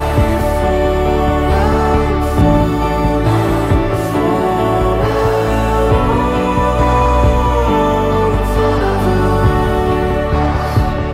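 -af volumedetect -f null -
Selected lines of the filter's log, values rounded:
mean_volume: -12.8 dB
max_volume: -2.2 dB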